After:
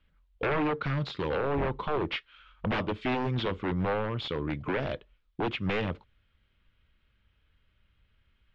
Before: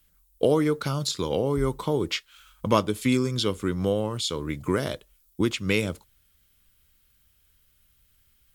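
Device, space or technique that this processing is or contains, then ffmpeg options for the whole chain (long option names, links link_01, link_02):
synthesiser wavefolder: -af "aeval=exprs='0.075*(abs(mod(val(0)/0.075+3,4)-2)-1)':channel_layout=same,lowpass=frequency=3100:width=0.5412,lowpass=frequency=3100:width=1.3066"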